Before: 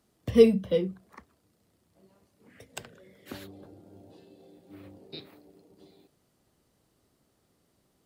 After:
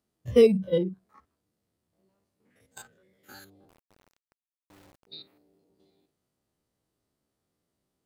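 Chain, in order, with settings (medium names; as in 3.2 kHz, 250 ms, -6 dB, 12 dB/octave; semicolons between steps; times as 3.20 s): spectrogram pixelated in time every 50 ms; spectral noise reduction 14 dB; 3.69–5.07 s: word length cut 10-bit, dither none; trim +4.5 dB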